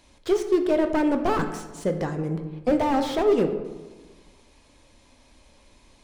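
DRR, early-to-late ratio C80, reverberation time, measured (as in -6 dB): 6.0 dB, 11.0 dB, 1.3 s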